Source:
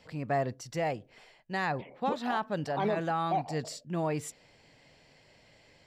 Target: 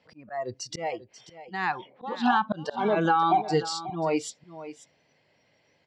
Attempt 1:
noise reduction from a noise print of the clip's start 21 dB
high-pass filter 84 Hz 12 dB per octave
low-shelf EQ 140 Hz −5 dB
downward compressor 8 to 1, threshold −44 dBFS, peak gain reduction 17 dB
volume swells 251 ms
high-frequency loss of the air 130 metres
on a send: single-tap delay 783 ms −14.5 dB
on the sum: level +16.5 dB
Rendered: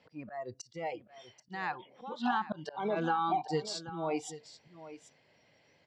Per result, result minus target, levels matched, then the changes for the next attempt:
echo 245 ms late; downward compressor: peak gain reduction +8.5 dB
change: single-tap delay 538 ms −14.5 dB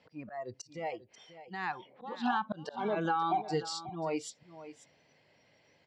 downward compressor: peak gain reduction +8.5 dB
change: downward compressor 8 to 1, threshold −34.5 dBFS, peak gain reduction 9 dB

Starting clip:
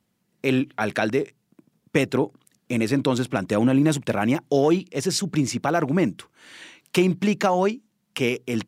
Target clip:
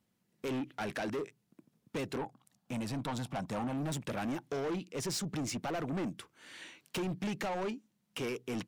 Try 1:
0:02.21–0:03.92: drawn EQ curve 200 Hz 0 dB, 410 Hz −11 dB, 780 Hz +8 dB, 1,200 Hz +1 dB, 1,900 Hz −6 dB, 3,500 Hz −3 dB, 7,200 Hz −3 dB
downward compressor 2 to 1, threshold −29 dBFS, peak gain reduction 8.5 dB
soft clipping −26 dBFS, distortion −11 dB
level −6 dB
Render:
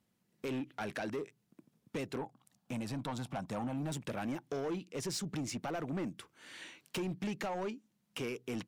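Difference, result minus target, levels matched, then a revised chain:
downward compressor: peak gain reduction +5 dB
0:02.21–0:03.92: drawn EQ curve 200 Hz 0 dB, 410 Hz −11 dB, 780 Hz +8 dB, 1,200 Hz +1 dB, 1,900 Hz −6 dB, 3,500 Hz −3 dB, 7,200 Hz −3 dB
downward compressor 2 to 1, threshold −19 dBFS, peak gain reduction 3.5 dB
soft clipping −26 dBFS, distortion −7 dB
level −6 dB

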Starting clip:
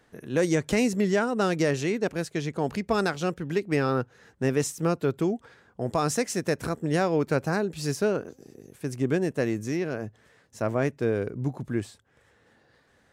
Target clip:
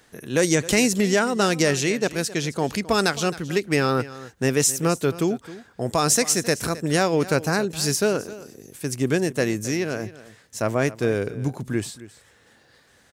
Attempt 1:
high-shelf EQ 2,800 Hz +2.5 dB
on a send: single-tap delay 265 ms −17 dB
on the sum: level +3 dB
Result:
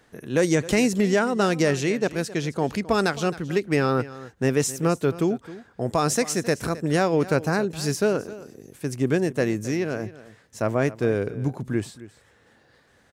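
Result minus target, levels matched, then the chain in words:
4,000 Hz band −5.0 dB
high-shelf EQ 2,800 Hz +11.5 dB
on a send: single-tap delay 265 ms −17 dB
on the sum: level +3 dB

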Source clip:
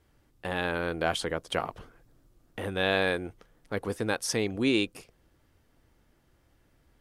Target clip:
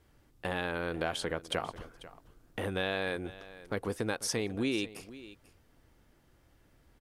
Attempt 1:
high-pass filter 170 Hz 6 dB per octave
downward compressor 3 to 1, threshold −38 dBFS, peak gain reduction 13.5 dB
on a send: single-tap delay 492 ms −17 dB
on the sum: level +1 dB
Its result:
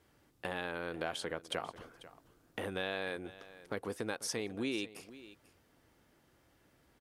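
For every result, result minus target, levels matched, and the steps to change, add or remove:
downward compressor: peak gain reduction +4.5 dB; 125 Hz band −3.5 dB
change: downward compressor 3 to 1, threshold −31.5 dBFS, peak gain reduction 9 dB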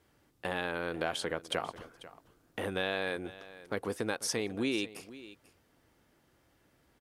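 125 Hz band −4.0 dB
remove: high-pass filter 170 Hz 6 dB per octave

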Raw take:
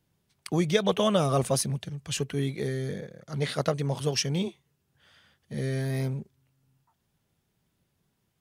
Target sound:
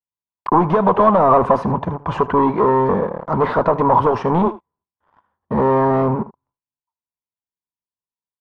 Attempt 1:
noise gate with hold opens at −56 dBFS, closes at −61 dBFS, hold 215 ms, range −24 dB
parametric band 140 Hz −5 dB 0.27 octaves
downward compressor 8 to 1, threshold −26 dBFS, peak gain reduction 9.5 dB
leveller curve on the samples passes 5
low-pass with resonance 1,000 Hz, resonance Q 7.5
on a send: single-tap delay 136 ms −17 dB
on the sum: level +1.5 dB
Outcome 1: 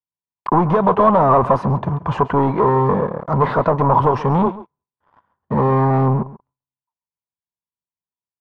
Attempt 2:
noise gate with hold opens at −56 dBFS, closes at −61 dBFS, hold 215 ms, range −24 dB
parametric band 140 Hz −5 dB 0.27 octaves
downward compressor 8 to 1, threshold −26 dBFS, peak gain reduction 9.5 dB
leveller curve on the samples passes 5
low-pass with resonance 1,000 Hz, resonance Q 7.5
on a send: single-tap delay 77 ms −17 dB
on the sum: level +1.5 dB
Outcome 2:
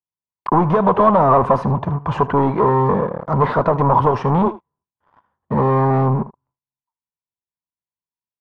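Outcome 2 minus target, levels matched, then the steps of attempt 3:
125 Hz band +5.0 dB
noise gate with hold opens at −56 dBFS, closes at −61 dBFS, hold 215 ms, range −24 dB
parametric band 140 Hz −14.5 dB 0.27 octaves
downward compressor 8 to 1, threshold −26 dBFS, peak gain reduction 9 dB
leveller curve on the samples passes 5
low-pass with resonance 1,000 Hz, resonance Q 7.5
on a send: single-tap delay 77 ms −17 dB
on the sum: level +1.5 dB

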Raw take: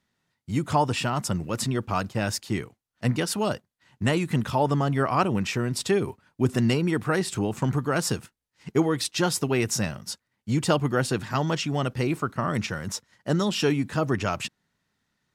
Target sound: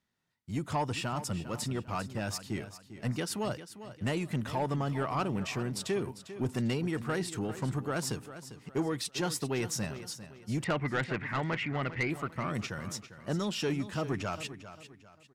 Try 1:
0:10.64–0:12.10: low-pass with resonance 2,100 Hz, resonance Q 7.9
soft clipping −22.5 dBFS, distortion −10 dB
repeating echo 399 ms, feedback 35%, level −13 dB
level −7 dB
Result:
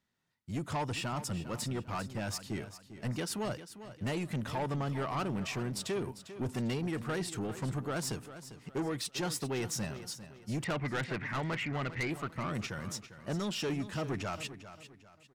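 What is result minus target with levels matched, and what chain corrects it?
soft clipping: distortion +6 dB
0:10.64–0:12.10: low-pass with resonance 2,100 Hz, resonance Q 7.9
soft clipping −16 dBFS, distortion −16 dB
repeating echo 399 ms, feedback 35%, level −13 dB
level −7 dB

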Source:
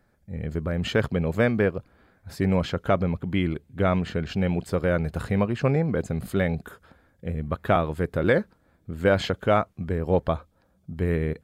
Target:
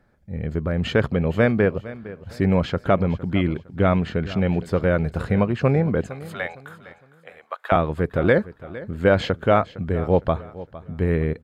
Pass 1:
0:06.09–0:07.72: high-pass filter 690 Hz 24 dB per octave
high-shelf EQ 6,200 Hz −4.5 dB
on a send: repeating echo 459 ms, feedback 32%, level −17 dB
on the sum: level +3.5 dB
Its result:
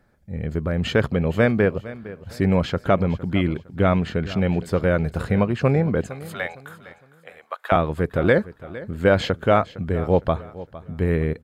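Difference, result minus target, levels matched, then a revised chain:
8,000 Hz band +4.5 dB
0:06.09–0:07.72: high-pass filter 690 Hz 24 dB per octave
high-shelf EQ 6,200 Hz −12 dB
on a send: repeating echo 459 ms, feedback 32%, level −17 dB
on the sum: level +3.5 dB

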